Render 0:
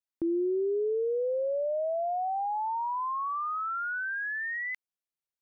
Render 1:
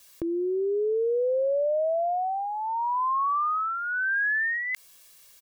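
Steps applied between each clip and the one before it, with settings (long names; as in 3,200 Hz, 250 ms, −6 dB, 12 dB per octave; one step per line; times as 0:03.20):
high-shelf EQ 2,100 Hz +9.5 dB
comb filter 1.8 ms, depth 63%
envelope flattener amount 50%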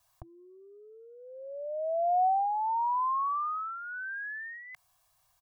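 drawn EQ curve 130 Hz 0 dB, 250 Hz −27 dB, 480 Hz −25 dB, 740 Hz +5 dB, 2,100 Hz −16 dB
level −1.5 dB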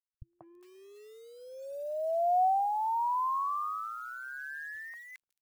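bit reduction 10 bits
three-band delay without the direct sound lows, mids, highs 190/410 ms, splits 190/1,500 Hz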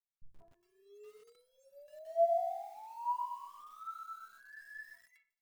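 stiff-string resonator 200 Hz, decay 0.29 s, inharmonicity 0.03
convolution reverb RT60 0.45 s, pre-delay 6 ms, DRR 1.5 dB
feedback echo at a low word length 124 ms, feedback 35%, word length 10 bits, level −6 dB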